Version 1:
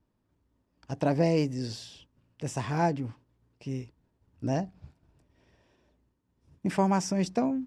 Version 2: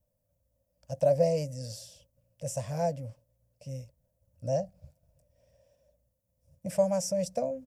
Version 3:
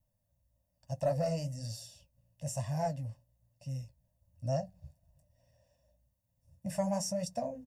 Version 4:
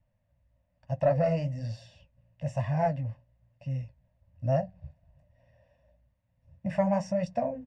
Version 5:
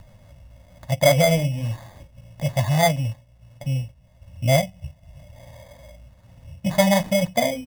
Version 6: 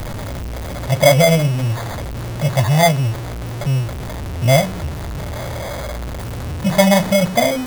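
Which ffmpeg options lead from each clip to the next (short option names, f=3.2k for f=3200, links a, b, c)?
-af "firequalizer=gain_entry='entry(140,0);entry(380,-24);entry(540,14);entry(810,-9);entry(1200,-13);entry(2300,-8);entry(3700,-8);entry(5700,3);entry(13000,14)':delay=0.05:min_phase=1,volume=-2.5dB"
-af "aecho=1:1:1.1:0.76,asoftclip=type=tanh:threshold=-15.5dB,flanger=delay=7.3:depth=9.1:regen=-43:speed=1.1:shape=sinusoidal"
-af "lowpass=f=2.2k:t=q:w=1.6,volume=6dB"
-filter_complex "[0:a]asplit=2[a][b];[b]acompressor=mode=upward:threshold=-32dB:ratio=2.5,volume=-1dB[c];[a][c]amix=inputs=2:normalize=0,acrusher=samples=16:mix=1:aa=0.000001,volume=3dB"
-af "aeval=exprs='val(0)+0.5*0.0562*sgn(val(0))':c=same,volume=4dB"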